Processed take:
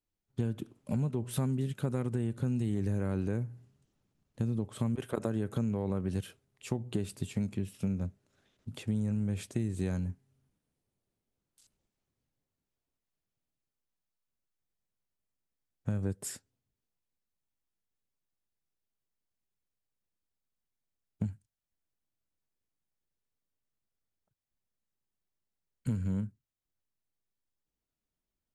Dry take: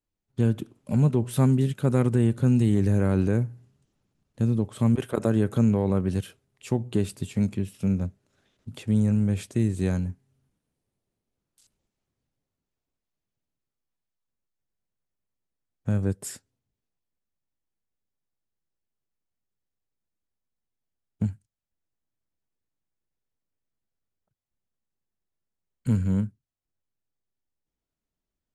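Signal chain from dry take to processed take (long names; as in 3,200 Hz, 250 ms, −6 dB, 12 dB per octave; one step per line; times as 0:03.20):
downward compressor, threshold −25 dBFS, peak gain reduction 9.5 dB
level −3 dB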